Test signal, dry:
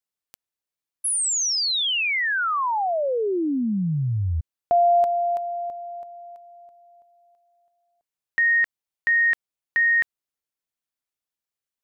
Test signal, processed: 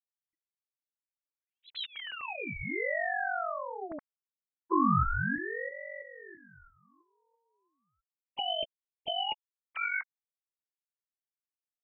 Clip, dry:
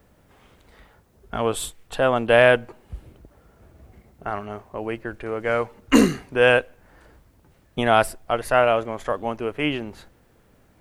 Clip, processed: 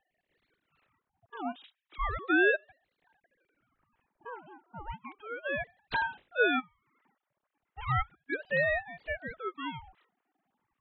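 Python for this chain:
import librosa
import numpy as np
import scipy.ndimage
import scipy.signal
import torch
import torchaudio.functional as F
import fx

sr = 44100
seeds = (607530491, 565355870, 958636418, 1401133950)

y = fx.sine_speech(x, sr)
y = fx.ring_lfo(y, sr, carrier_hz=750.0, swing_pct=70, hz=0.34)
y = y * 10.0 ** (-8.5 / 20.0)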